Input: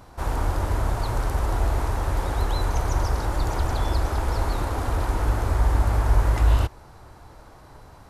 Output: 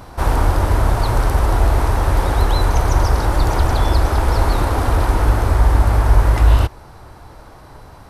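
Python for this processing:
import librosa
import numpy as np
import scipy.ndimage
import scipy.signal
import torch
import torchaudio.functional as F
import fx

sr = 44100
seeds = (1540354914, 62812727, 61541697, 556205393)

p1 = fx.peak_eq(x, sr, hz=7000.0, db=-5.0, octaves=0.24)
p2 = fx.rider(p1, sr, range_db=10, speed_s=0.5)
p3 = p1 + (p2 * 10.0 ** (-3.0 / 20.0))
y = p3 * 10.0 ** (3.5 / 20.0)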